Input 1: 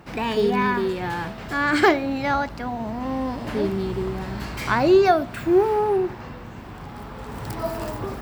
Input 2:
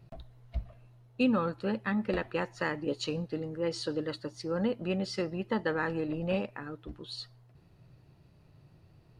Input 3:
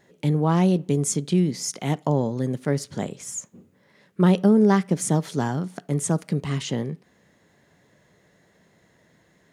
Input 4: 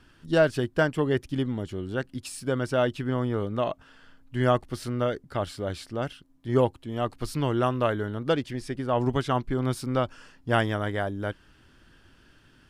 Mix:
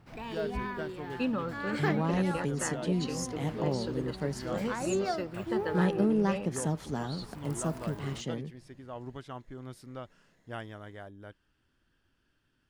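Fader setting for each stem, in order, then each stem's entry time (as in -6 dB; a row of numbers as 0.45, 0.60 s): -15.5, -4.5, -10.0, -17.0 dB; 0.00, 0.00, 1.55, 0.00 s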